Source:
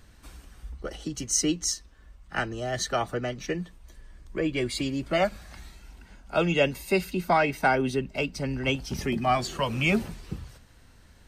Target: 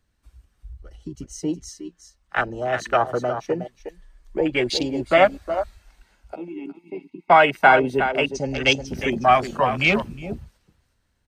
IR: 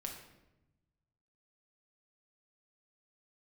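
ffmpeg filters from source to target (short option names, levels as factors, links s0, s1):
-filter_complex "[0:a]asplit=3[s0][s1][s2];[s0]afade=t=out:st=6.34:d=0.02[s3];[s1]asplit=3[s4][s5][s6];[s4]bandpass=f=300:t=q:w=8,volume=1[s7];[s5]bandpass=f=870:t=q:w=8,volume=0.501[s8];[s6]bandpass=f=2240:t=q:w=8,volume=0.355[s9];[s7][s8][s9]amix=inputs=3:normalize=0,afade=t=in:st=6.34:d=0.02,afade=t=out:st=7.29:d=0.02[s10];[s2]afade=t=in:st=7.29:d=0.02[s11];[s3][s10][s11]amix=inputs=3:normalize=0,acrossover=split=410[s12][s13];[s13]dynaudnorm=f=430:g=9:m=4.47[s14];[s12][s14]amix=inputs=2:normalize=0,asettb=1/sr,asplit=3[s15][s16][s17];[s15]atrim=end=8.274[s18];[s16]atrim=start=8.27:end=8.87,asetpts=PTS-STARTPTS,afade=t=in:d=0.004:c=qsin,afade=t=out:st=0.596:d=0.004:c=qsin,lowpass=f=6500:t=q:w=7.9[s19];[s17]atrim=start=8.866[s20];[s18][s19]acrossfade=d=0.004:c1=hsin:c2=qsin[s21];[s21][s20]acrossfade=d=0.004:c1=qsin:c2=hsin,aecho=1:1:363:0.355,afwtdn=0.0631"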